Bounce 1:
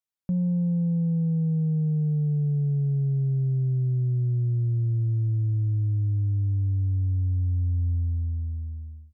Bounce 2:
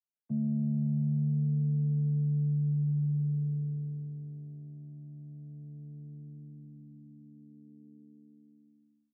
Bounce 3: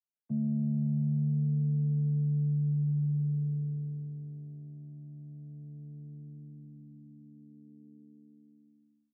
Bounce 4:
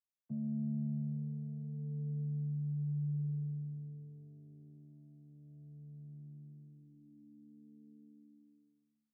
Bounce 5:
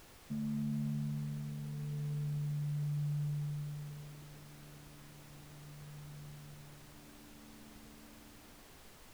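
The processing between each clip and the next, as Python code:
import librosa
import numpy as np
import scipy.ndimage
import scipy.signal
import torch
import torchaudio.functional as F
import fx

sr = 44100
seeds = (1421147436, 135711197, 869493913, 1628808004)

y1 = fx.chord_vocoder(x, sr, chord='bare fifth', root=50)
y1 = fx.dynamic_eq(y1, sr, hz=410.0, q=0.84, threshold_db=-42.0, ratio=4.0, max_db=-4)
y1 = y1 * 10.0 ** (-6.0 / 20.0)
y2 = y1
y3 = fx.chorus_voices(y2, sr, voices=2, hz=0.32, base_ms=30, depth_ms=1.5, mix_pct=30)
y3 = y3 * 10.0 ** (-4.0 / 20.0)
y4 = fx.dmg_noise_colour(y3, sr, seeds[0], colour='pink', level_db=-57.0)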